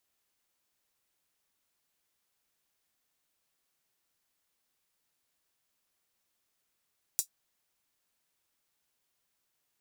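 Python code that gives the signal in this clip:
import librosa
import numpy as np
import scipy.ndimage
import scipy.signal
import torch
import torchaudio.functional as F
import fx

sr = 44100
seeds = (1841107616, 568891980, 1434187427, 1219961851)

y = fx.drum_hat(sr, length_s=0.24, from_hz=6400.0, decay_s=0.1)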